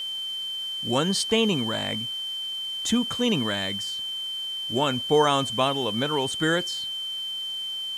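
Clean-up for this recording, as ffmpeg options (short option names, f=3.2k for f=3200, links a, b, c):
-af "adeclick=t=4,bandreject=f=3.1k:w=30,afwtdn=0.0035"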